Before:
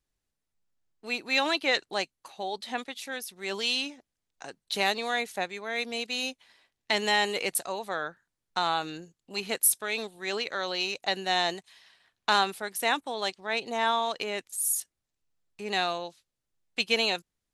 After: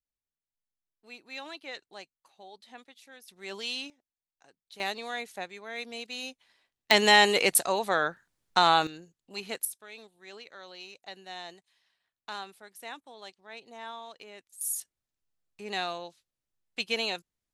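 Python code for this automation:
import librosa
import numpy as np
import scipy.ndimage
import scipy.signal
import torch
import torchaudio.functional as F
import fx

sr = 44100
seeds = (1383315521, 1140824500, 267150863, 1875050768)

y = fx.gain(x, sr, db=fx.steps((0.0, -15.5), (3.28, -6.5), (3.9, -18.5), (4.8, -6.5), (6.91, 6.0), (8.87, -5.0), (9.65, -15.5), (14.61, -4.5)))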